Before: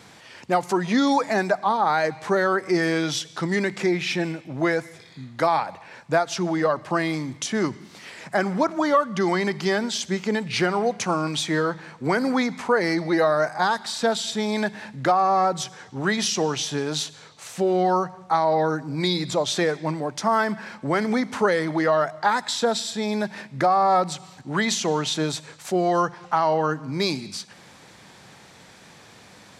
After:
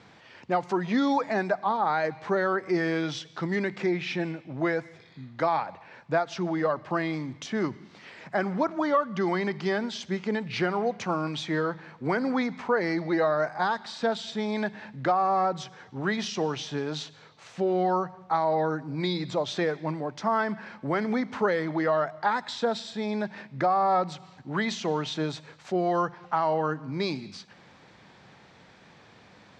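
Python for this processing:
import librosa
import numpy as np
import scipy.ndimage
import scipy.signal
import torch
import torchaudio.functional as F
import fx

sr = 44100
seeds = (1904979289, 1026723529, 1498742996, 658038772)

y = fx.air_absorb(x, sr, metres=150.0)
y = F.gain(torch.from_numpy(y), -4.0).numpy()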